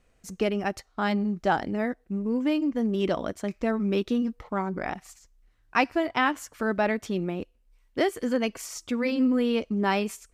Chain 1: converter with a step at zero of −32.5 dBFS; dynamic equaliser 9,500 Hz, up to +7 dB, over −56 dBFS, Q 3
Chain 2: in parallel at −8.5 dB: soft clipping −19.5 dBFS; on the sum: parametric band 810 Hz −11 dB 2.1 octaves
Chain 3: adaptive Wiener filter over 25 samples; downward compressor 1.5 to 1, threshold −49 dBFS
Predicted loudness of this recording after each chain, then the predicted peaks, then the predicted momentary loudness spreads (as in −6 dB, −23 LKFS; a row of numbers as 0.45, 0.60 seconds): −26.0, −29.5, −37.5 LKFS; −8.5, −13.5, −19.5 dBFS; 7, 8, 7 LU